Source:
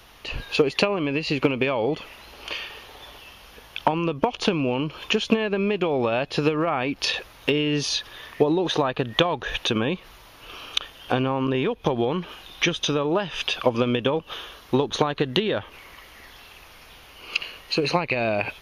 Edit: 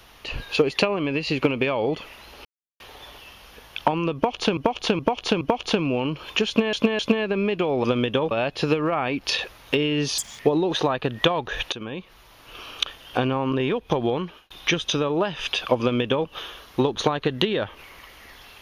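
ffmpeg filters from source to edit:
ffmpeg -i in.wav -filter_complex "[0:a]asplit=14[link_01][link_02][link_03][link_04][link_05][link_06][link_07][link_08][link_09][link_10][link_11][link_12][link_13][link_14];[link_01]atrim=end=2.45,asetpts=PTS-STARTPTS,afade=type=out:start_time=2.446:duration=0.004:curve=hsin[link_15];[link_02]atrim=start=2.45:end=2.8,asetpts=PTS-STARTPTS,volume=0[link_16];[link_03]atrim=start=2.8:end=4.572,asetpts=PTS-STARTPTS,afade=type=in:duration=0.004:curve=hsin[link_17];[link_04]atrim=start=4.148:end=4.572[link_18];[link_05]atrim=start=4.148:end=4.572[link_19];[link_06]atrim=start=4.148:end=5.472[link_20];[link_07]atrim=start=5.208:end=5.472[link_21];[link_08]atrim=start=5.208:end=6.062[link_22];[link_09]atrim=start=13.748:end=14.222[link_23];[link_10]atrim=start=6.058:end=7.934[link_24];[link_11]atrim=start=7.93:end=8.34,asetpts=PTS-STARTPTS,asetrate=84672,aresample=44100,atrim=end_sample=9417,asetpts=PTS-STARTPTS[link_25];[link_12]atrim=start=8.336:end=9.67,asetpts=PTS-STARTPTS,afade=type=out:start_time=1.33:duration=0.004:curve=hsin:silence=0.188365[link_26];[link_13]atrim=start=9.67:end=12.45,asetpts=PTS-STARTPTS,afade=type=in:duration=0.86:silence=0.188365,afade=type=out:start_time=2.41:duration=0.37[link_27];[link_14]atrim=start=12.45,asetpts=PTS-STARTPTS,afade=type=in:duration=0.004:curve=hsin[link_28];[link_15][link_16][link_17]concat=n=3:v=0:a=1[link_29];[link_29][link_18]acrossfade=duration=0.004:curve1=hsin:curve2=hsin[link_30];[link_30][link_19]acrossfade=duration=0.004:curve1=hsin:curve2=hsin[link_31];[link_31][link_20]acrossfade=duration=0.004:curve1=hsin:curve2=hsin[link_32];[link_32][link_21]acrossfade=duration=0.004:curve1=hsin:curve2=hsin[link_33];[link_33][link_22]acrossfade=duration=0.004:curve1=hsin:curve2=hsin[link_34];[link_34][link_23]acrossfade=duration=0.004:curve1=hsin:curve2=hsin[link_35];[link_35][link_24]acrossfade=duration=0.004:curve1=hsin:curve2=hsin[link_36];[link_36][link_25]acrossfade=duration=0.004:curve1=hsin:curve2=hsin[link_37];[link_26][link_27][link_28]concat=n=3:v=0:a=1[link_38];[link_37][link_38]acrossfade=duration=0.004:curve1=hsin:curve2=hsin" out.wav

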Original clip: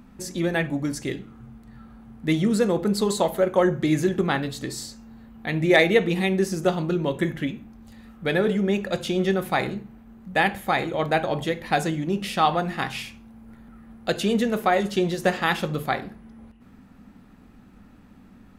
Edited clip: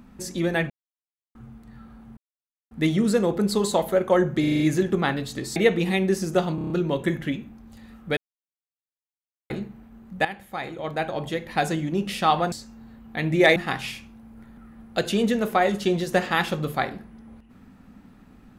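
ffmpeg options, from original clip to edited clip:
ffmpeg -i in.wav -filter_complex "[0:a]asplit=20[link_01][link_02][link_03][link_04][link_05][link_06][link_07][link_08][link_09][link_10][link_11][link_12][link_13][link_14][link_15][link_16][link_17][link_18][link_19][link_20];[link_01]atrim=end=0.7,asetpts=PTS-STARTPTS,afade=type=out:start_time=0.696:duration=0.004:curve=hsin[link_21];[link_02]atrim=start=0.7:end=1.35,asetpts=PTS-STARTPTS,volume=0[link_22];[link_03]atrim=start=1.35:end=2.17,asetpts=PTS-STARTPTS,afade=type=in:duration=0.004:curve=hsin,afade=type=out:start_time=0.816:duration=0.004:curve=hsin,apad=pad_dur=0.54[link_23];[link_04]atrim=start=2.17:end=3.902,asetpts=PTS-STARTPTS,afade=type=in:duration=0.004:curve=hsin[link_24];[link_05]atrim=start=3.858:end=3.902[link_25];[link_06]atrim=start=3.858:end=3.902[link_26];[link_07]atrim=start=3.858:end=3.902[link_27];[link_08]atrim=start=3.858:end=3.902[link_28];[link_09]atrim=start=3.858:end=4.822[link_29];[link_10]atrim=start=5.858:end=6.882[link_30];[link_11]atrim=start=6.848:end=6.882[link_31];[link_12]atrim=start=6.848:end=6.882[link_32];[link_13]atrim=start=6.848:end=6.882[link_33];[link_14]atrim=start=6.848:end=6.882[link_34];[link_15]atrim=start=6.848:end=8.32,asetpts=PTS-STARTPTS,afade=type=out:start_time=1.468:duration=0.004:curve=hsin[link_35];[link_16]atrim=start=8.32:end=9.65,asetpts=PTS-STARTPTS,volume=0[link_36];[link_17]atrim=start=9.65:end=10.4,asetpts=PTS-STARTPTS,afade=type=in:duration=0.004:curve=hsin,afade=type=out:start_time=0.746:duration=0.004:curve=hsin:silence=0.177828[link_37];[link_18]atrim=start=10.4:end=12.672,asetpts=PTS-STARTPTS,afade=type=in:duration=1.58:silence=0.177828[link_38];[link_19]atrim=start=4.818:end=5.862[link_39];[link_20]atrim=start=12.668[link_40];[link_21][link_22][link_23][link_24]concat=n=4:v=0:a=1[link_41];[link_41][link_25]acrossfade=duration=0.004:curve1=hsin:curve2=hsin[link_42];[link_42][link_26]acrossfade=duration=0.004:curve1=hsin:curve2=hsin[link_43];[link_43][link_27]acrossfade=duration=0.004:curve1=hsin:curve2=hsin[link_44];[link_44][link_28]acrossfade=duration=0.004:curve1=hsin:curve2=hsin[link_45];[link_45][link_29]acrossfade=duration=0.004:curve1=hsin:curve2=hsin[link_46];[link_46][link_30]acrossfade=duration=0.004:curve1=hsin:curve2=hsin[link_47];[link_47][link_31]acrossfade=duration=0.004:curve1=hsin:curve2=hsin[link_48];[link_48][link_32]acrossfade=duration=0.004:curve1=hsin:curve2=hsin[link_49];[link_49][link_33]acrossfade=duration=0.004:curve1=hsin:curve2=hsin[link_50];[link_50][link_34]acrossfade=duration=0.004:curve1=hsin:curve2=hsin[link_51];[link_35][link_36][link_37][link_38]concat=n=4:v=0:a=1[link_52];[link_51][link_52]acrossfade=duration=0.004:curve1=hsin:curve2=hsin[link_53];[link_53][link_39]acrossfade=duration=0.004:curve1=hsin:curve2=hsin[link_54];[link_54][link_40]acrossfade=duration=0.004:curve1=hsin:curve2=hsin" out.wav

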